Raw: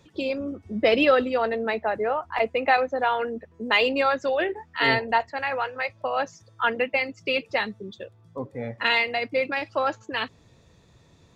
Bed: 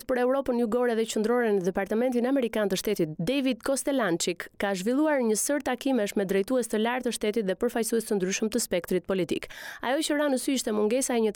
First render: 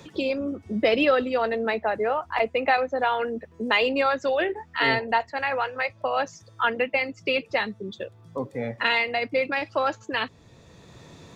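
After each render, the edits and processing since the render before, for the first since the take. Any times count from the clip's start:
multiband upward and downward compressor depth 40%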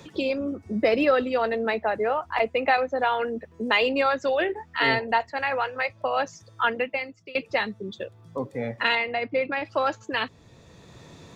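0:00.54–0:01.15: parametric band 3,200 Hz −9 dB 0.44 octaves
0:06.67–0:07.35: fade out, to −23 dB
0:08.95–0:09.65: high-frequency loss of the air 220 metres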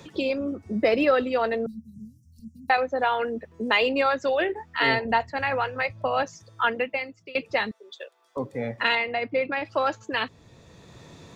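0:01.66–0:02.70: Chebyshev band-stop filter 230–5,500 Hz, order 5
0:05.05–0:06.23: bass and treble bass +10 dB, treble 0 dB
0:07.71–0:08.37: Bessel high-pass filter 740 Hz, order 6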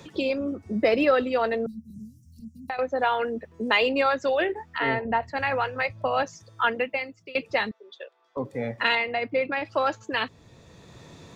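0:01.90–0:02.79: multiband upward and downward compressor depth 70%
0:04.78–0:05.23: high-frequency loss of the air 470 metres
0:07.69–0:08.45: high-frequency loss of the air 150 metres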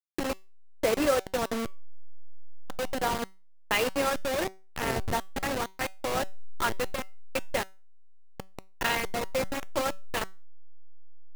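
hold until the input has moved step −19.5 dBFS
tuned comb filter 190 Hz, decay 0.31 s, harmonics all, mix 40%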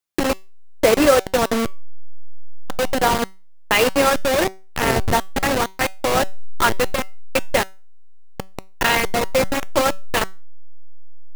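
level +11 dB
brickwall limiter −3 dBFS, peak gain reduction 2.5 dB

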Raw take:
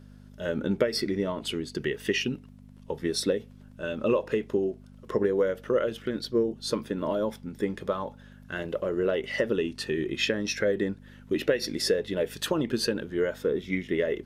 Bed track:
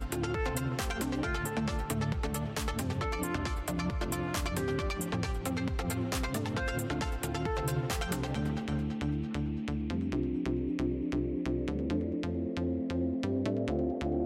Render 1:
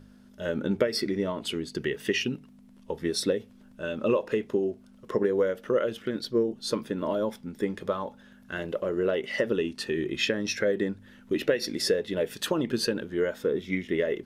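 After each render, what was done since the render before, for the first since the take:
hum removal 50 Hz, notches 3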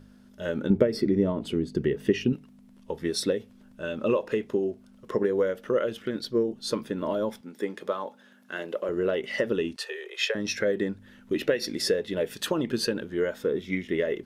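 0:00.70–0:02.33: tilt shelving filter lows +8 dB, about 750 Hz
0:07.41–0:08.89: high-pass filter 280 Hz
0:09.76–0:10.35: Butterworth high-pass 420 Hz 72 dB per octave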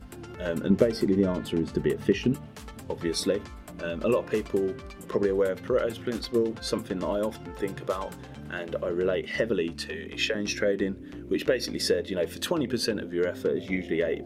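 mix in bed track −9.5 dB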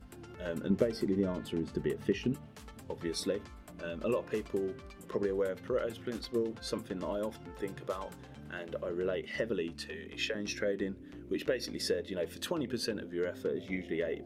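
level −7.5 dB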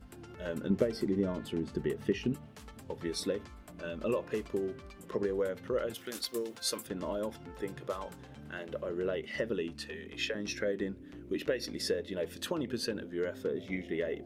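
0:05.94–0:06.87: RIAA equalisation recording

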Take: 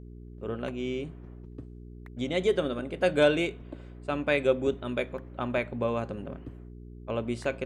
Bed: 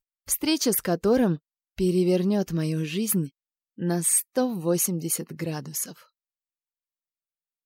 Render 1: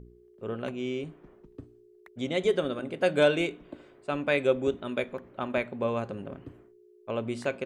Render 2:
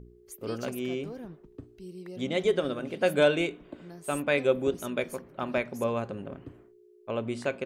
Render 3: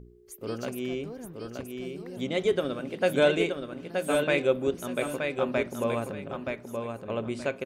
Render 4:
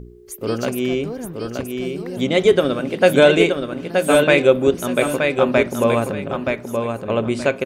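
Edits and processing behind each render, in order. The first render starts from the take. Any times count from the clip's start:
hum removal 60 Hz, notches 5
mix in bed −21 dB
repeating echo 924 ms, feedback 22%, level −5 dB
level +11.5 dB; brickwall limiter −2 dBFS, peak gain reduction 2.5 dB

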